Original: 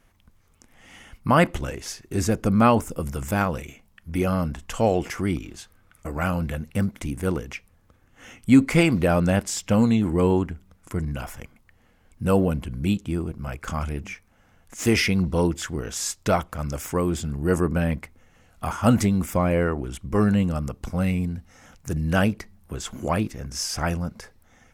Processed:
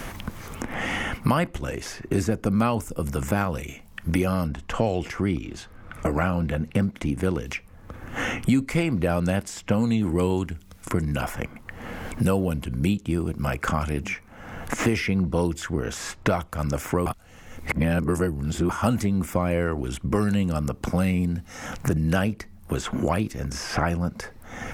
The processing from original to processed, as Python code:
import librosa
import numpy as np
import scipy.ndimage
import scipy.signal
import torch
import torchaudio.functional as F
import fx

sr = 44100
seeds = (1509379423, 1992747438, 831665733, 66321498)

y = fx.lowpass(x, sr, hz=1600.0, slope=6, at=(4.46, 7.45), fade=0.02)
y = fx.edit(y, sr, fx.reverse_span(start_s=17.06, length_s=1.63), tone=tone)
y = fx.band_squash(y, sr, depth_pct=100)
y = y * librosa.db_to_amplitude(-1.5)